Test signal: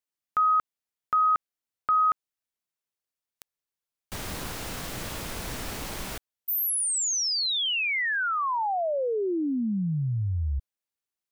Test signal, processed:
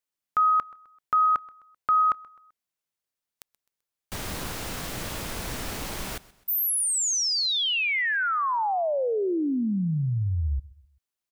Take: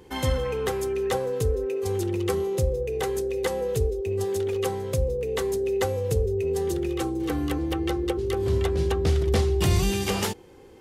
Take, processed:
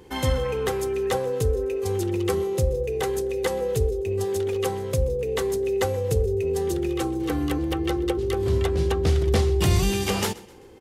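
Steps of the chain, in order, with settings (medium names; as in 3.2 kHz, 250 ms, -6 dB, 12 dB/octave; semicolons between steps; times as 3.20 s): feedback delay 129 ms, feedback 40%, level -21 dB; trim +1.5 dB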